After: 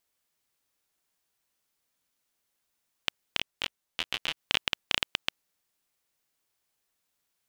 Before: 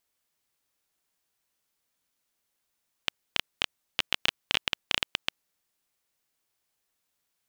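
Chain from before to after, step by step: 3.39–4.37 detuned doubles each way 12 cents

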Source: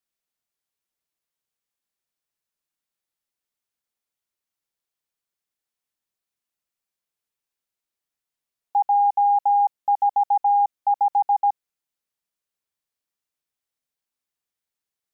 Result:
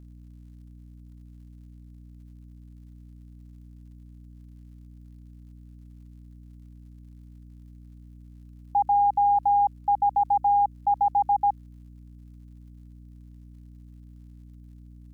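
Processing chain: hum 60 Hz, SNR 17 dB; tone controls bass 0 dB, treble +7 dB; crackle 140/s -55 dBFS; gain -2.5 dB

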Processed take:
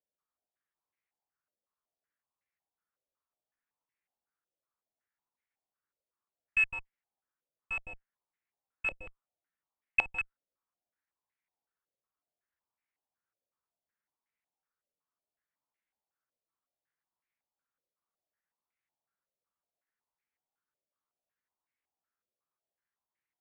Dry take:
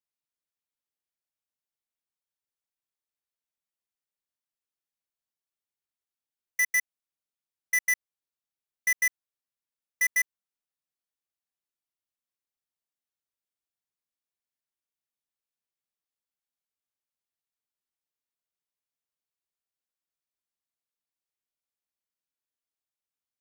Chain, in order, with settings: pitch shift +4.5 st; added harmonics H 4 -25 dB, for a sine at -20 dBFS; stepped low-pass 5.4 Hz 560–2100 Hz; gain +1.5 dB

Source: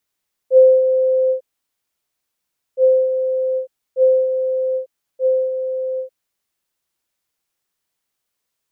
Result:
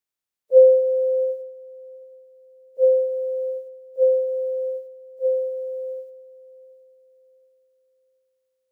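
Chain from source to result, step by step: spectral limiter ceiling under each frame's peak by 13 dB; thinning echo 0.724 s, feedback 41%, high-pass 390 Hz, level -12 dB; upward expander 1.5:1, over -29 dBFS

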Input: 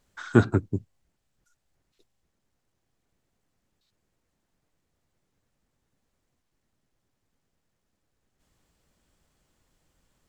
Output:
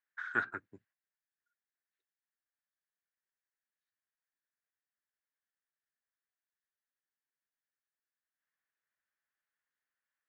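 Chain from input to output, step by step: gate -45 dBFS, range -11 dB; band-pass 1700 Hz, Q 4.5; gain +3 dB

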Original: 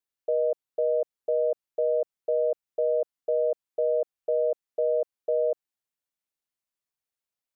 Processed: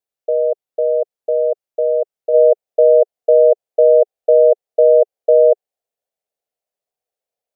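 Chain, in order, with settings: band shelf 570 Hz +8.5 dB 1.1 oct, from 2.33 s +15 dB

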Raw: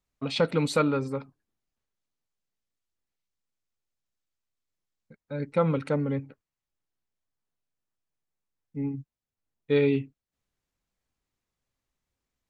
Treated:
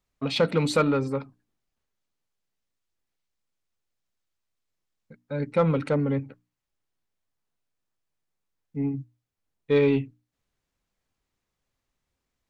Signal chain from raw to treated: high shelf 8200 Hz -5 dB; notches 60/120/180/240/300 Hz; in parallel at -4.5 dB: soft clip -25 dBFS, distortion -9 dB

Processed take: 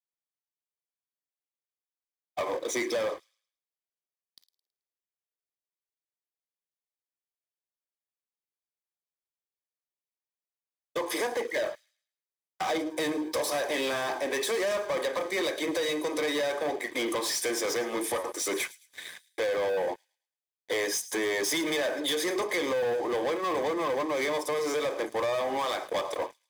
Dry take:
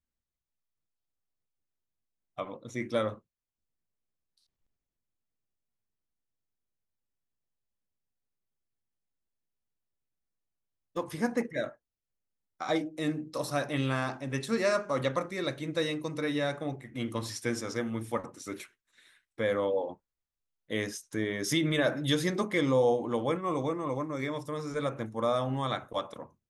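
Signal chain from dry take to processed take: steep high-pass 350 Hz 36 dB/oct; compressor, threshold -39 dBFS, peak gain reduction 16 dB; sample leveller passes 5; notch comb 1400 Hz; on a send: thin delay 0.108 s, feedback 33%, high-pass 4300 Hz, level -15 dB; on the sum: gain +2 dB

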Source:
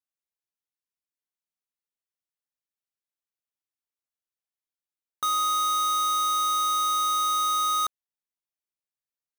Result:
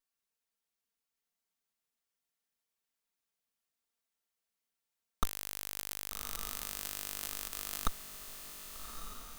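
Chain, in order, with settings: minimum comb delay 4.4 ms; diffused feedback echo 1.207 s, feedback 57%, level -7.5 dB; gain +5.5 dB

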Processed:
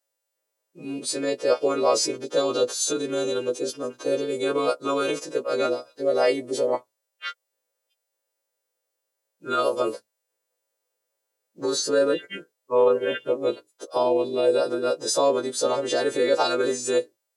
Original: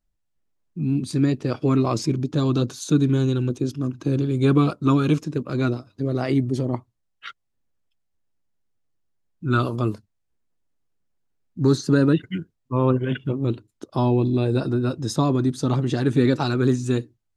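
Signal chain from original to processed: frequency quantiser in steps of 2 st; limiter -14 dBFS, peak gain reduction 7 dB; resonant high-pass 520 Hz, resonance Q 4.9

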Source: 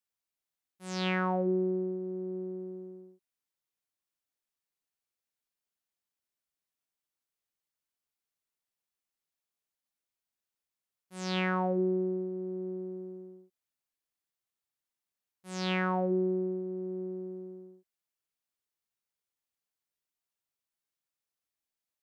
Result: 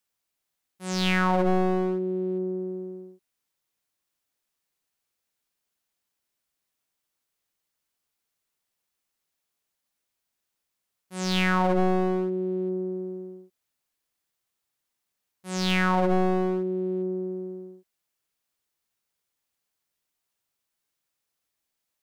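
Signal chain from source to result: one-sided fold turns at -34 dBFS; gain +8.5 dB

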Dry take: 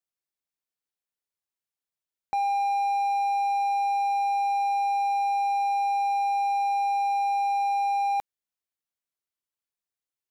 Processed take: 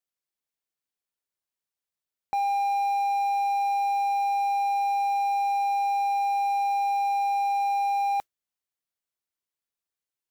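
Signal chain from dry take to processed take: modulation noise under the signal 33 dB

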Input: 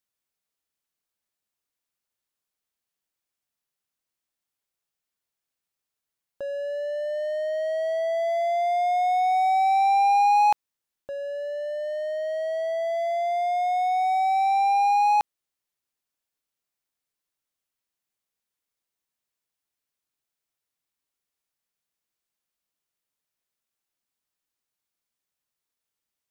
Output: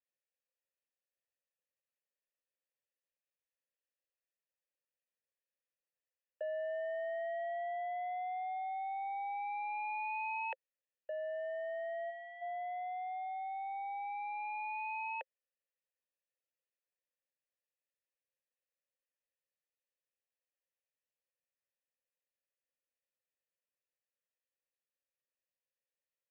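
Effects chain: spectral gain 12.1–12.42, 620–1400 Hz -14 dB; mistuned SSB +63 Hz 340–3100 Hz; vowel filter e; gain +2.5 dB

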